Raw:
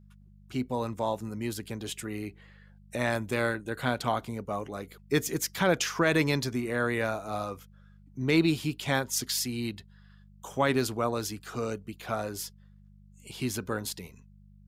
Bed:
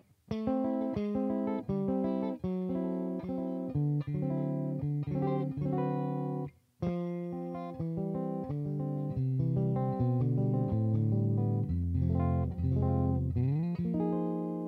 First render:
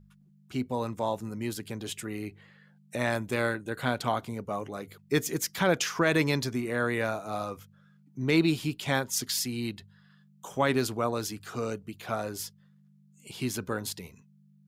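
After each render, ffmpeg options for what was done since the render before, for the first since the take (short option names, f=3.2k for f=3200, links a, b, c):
-af "bandreject=f=50:t=h:w=4,bandreject=f=100:t=h:w=4"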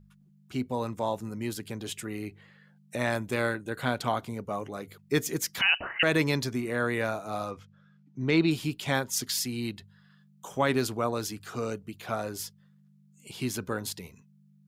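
-filter_complex "[0:a]asettb=1/sr,asplit=3[a][b][c];[a]atrim=end=5.614[d];[b]atrim=start=5.61:end=6.03,asetpts=PTS-STARTPTS,afade=t=in:d=0.004:c=qsin,afade=t=out:st=0.416:d=0.004:c=qsin,lowpass=f=2.6k:t=q:w=0.5098,lowpass=f=2.6k:t=q:w=0.6013,lowpass=f=2.6k:t=q:w=0.9,lowpass=f=2.6k:t=q:w=2.563,afreqshift=-3100[e];[c]atrim=start=6.026[f];[d][e]acrossfade=d=0.004:c1=hsin:c2=qsin[g];[g][f]acrossfade=d=0.004:c1=qsin:c2=hsin,asettb=1/sr,asplit=3[h][i][j];[h]atrim=end=7.514[k];[i]atrim=start=7.51:end=8.51,asetpts=PTS-STARTPTS,afade=t=in:d=0.004:c=qsin,afade=t=out:st=0.996:d=0.004:c=qsin,lowpass=5.2k[l];[j]atrim=start=8.506[m];[k][l]acrossfade=d=0.004:c1=hsin:c2=qsin[n];[n][m]acrossfade=d=0.004:c1=qsin:c2=hsin"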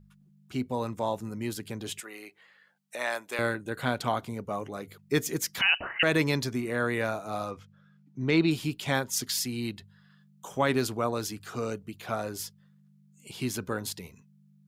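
-filter_complex "[0:a]asettb=1/sr,asplit=3[a][b][c];[a]atrim=end=2.004[d];[b]atrim=start=2:end=3.39,asetpts=PTS-STARTPTS,afade=t=in:d=0.004:c=qsin,afade=t=out:st=1.386:d=0.004:c=qsin,highpass=600[e];[c]atrim=start=3.386[f];[d][e]acrossfade=d=0.004:c1=hsin:c2=qsin[g];[g][f]acrossfade=d=0.004:c1=qsin:c2=hsin"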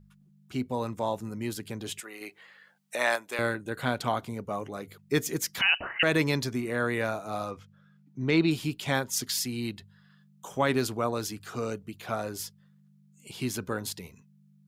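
-filter_complex "[0:a]asettb=1/sr,asplit=3[a][b][c];[a]atrim=end=2.214[d];[b]atrim=start=2.21:end=3.16,asetpts=PTS-STARTPTS,afade=t=in:d=0.004:c=qsin,afade=t=out:st=0.946:d=0.004:c=qsin,acontrast=30[e];[c]atrim=start=3.156[f];[d][e]acrossfade=d=0.004:c1=hsin:c2=qsin[g];[g][f]acrossfade=d=0.004:c1=qsin:c2=hsin"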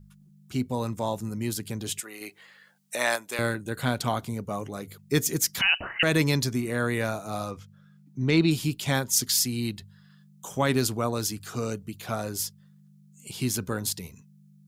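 -af "bass=f=250:g=6,treble=f=4k:g=8"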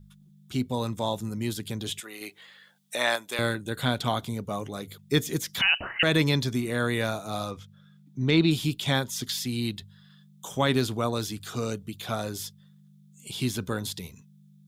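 -filter_complex "[0:a]equalizer=f=3.5k:w=5:g=10.5,acrossover=split=3300[a][b];[b]acompressor=threshold=-33dB:ratio=4:attack=1:release=60[c];[a][c]amix=inputs=2:normalize=0"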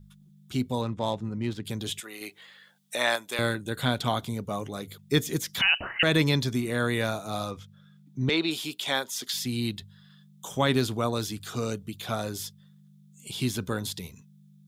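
-filter_complex "[0:a]asettb=1/sr,asplit=3[a][b][c];[a]atrim=end=0.814[d];[b]atrim=start=0.81:end=1.65,asetpts=PTS-STARTPTS,afade=t=in:d=0.004:c=qsin,afade=t=out:st=0.836:d=0.004:c=qsin,adynamicsmooth=sensitivity=4:basefreq=2.3k[e];[c]atrim=start=1.646[f];[d][e]acrossfade=d=0.004:c1=hsin:c2=qsin[g];[g][f]acrossfade=d=0.004:c1=qsin:c2=hsin,asettb=1/sr,asplit=3[h][i][j];[h]atrim=end=8.294[k];[i]atrim=start=8.29:end=9.34,asetpts=PTS-STARTPTS,afade=t=in:d=0.004:c=qsin,afade=t=out:st=1.046:d=0.004:c=qsin,highpass=420[l];[j]atrim=start=9.336[m];[k][l]acrossfade=d=0.004:c1=hsin:c2=qsin[n];[n][m]acrossfade=d=0.004:c1=qsin:c2=hsin"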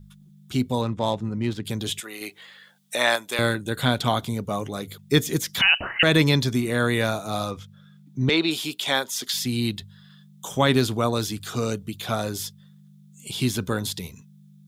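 -af "volume=4.5dB"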